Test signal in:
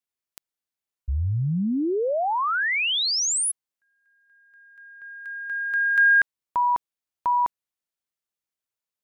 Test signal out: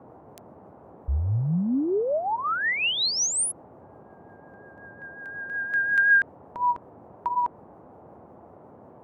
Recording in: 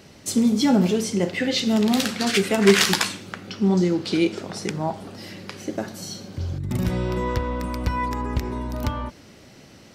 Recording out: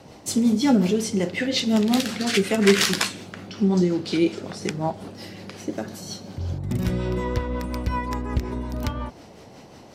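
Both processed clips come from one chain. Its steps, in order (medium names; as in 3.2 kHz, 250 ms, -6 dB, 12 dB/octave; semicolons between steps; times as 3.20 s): rotary cabinet horn 5.5 Hz; band noise 77–850 Hz -50 dBFS; trim +1 dB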